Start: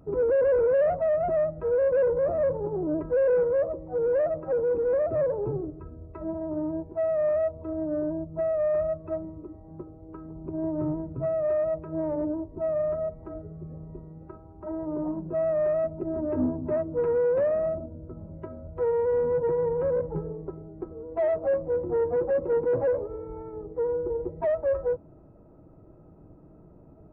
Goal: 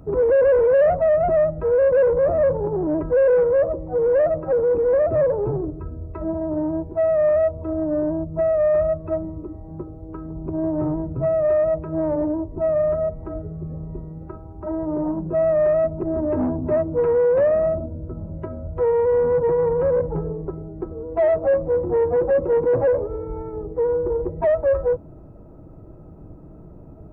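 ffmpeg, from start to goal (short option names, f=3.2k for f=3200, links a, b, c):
-filter_complex "[0:a]lowshelf=f=110:g=7,acrossover=split=490[a][b];[a]asoftclip=type=tanh:threshold=-27dB[c];[c][b]amix=inputs=2:normalize=0,volume=7dB"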